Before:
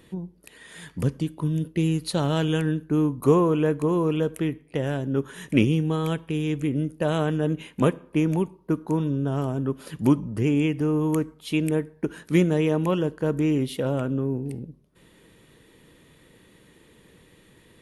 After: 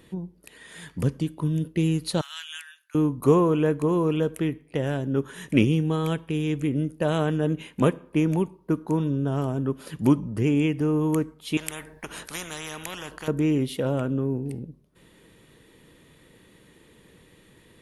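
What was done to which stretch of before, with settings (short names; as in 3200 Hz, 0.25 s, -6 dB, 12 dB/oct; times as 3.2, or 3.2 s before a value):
2.21–2.95 Bessel high-pass 2200 Hz, order 6
11.57–13.28 spectral compressor 4:1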